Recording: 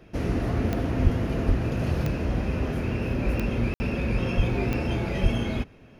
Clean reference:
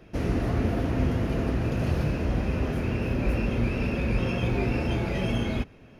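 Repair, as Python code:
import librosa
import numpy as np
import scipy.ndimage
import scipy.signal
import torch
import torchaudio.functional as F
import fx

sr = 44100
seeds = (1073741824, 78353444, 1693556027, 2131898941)

y = fx.fix_declick_ar(x, sr, threshold=10.0)
y = fx.fix_deplosive(y, sr, at_s=(1.03, 1.47, 4.36, 5.22))
y = fx.fix_ambience(y, sr, seeds[0], print_start_s=5.48, print_end_s=5.98, start_s=3.74, end_s=3.8)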